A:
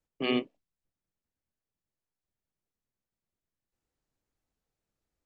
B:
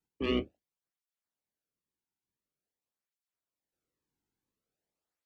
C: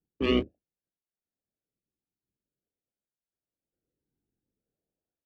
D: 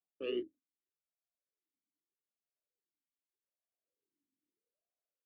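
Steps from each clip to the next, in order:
sub-octave generator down 2 octaves, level +3 dB; soft clipping −15 dBFS, distortion −23 dB; through-zero flanger with one copy inverted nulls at 0.47 Hz, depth 1.8 ms
adaptive Wiener filter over 41 samples; level +5.5 dB
downward compressor, threshold −25 dBFS, peak gain reduction 6.5 dB; formant filter swept between two vowels a-i 0.81 Hz; level +1.5 dB

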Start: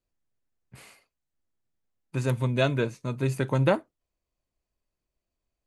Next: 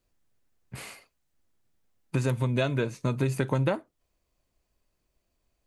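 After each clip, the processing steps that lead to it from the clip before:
downward compressor 6 to 1, threshold −32 dBFS, peak gain reduction 14 dB
level +8.5 dB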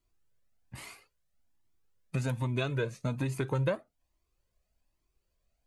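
flanger whose copies keep moving one way rising 1.2 Hz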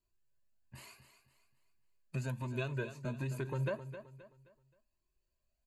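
EQ curve with evenly spaced ripples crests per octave 1.4, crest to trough 8 dB
on a send: repeating echo 263 ms, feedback 36%, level −11.5 dB
on the sum: level −8 dB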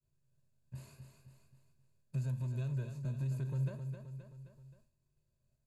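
compressor on every frequency bin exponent 0.6
downward expander −58 dBFS
drawn EQ curve 150 Hz 0 dB, 300 Hz −14 dB, 2,900 Hz −19 dB, 4,800 Hz −10 dB
level +1 dB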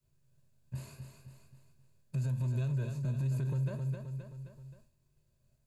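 brickwall limiter −33.5 dBFS, peak gain reduction 5.5 dB
level +6.5 dB

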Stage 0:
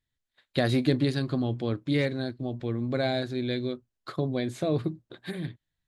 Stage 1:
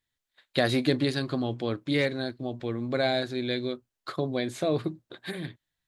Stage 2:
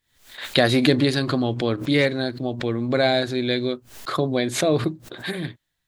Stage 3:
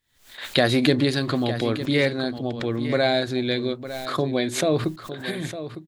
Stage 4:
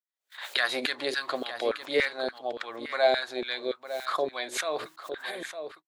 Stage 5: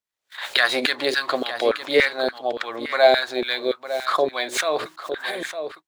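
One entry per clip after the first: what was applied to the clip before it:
low-shelf EQ 260 Hz −9.5 dB; level +3.5 dB
background raised ahead of every attack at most 110 dB per second; level +6.5 dB
single-tap delay 906 ms −12 dB; level −1.5 dB
auto-filter high-pass saw down 3.5 Hz 430–1,600 Hz; noise gate −44 dBFS, range −27 dB; level −5.5 dB
running median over 3 samples; level +8 dB

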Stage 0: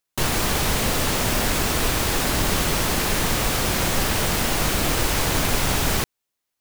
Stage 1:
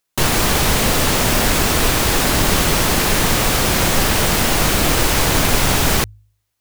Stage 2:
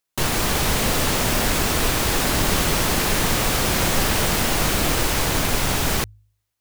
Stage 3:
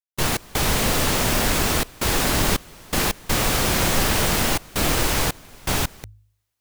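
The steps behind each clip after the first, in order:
hum removal 51.48 Hz, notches 2; level +6 dB
automatic gain control gain up to 4 dB; level −5.5 dB
gate pattern ".x.xxxxxxx.xxx." 82 BPM −24 dB

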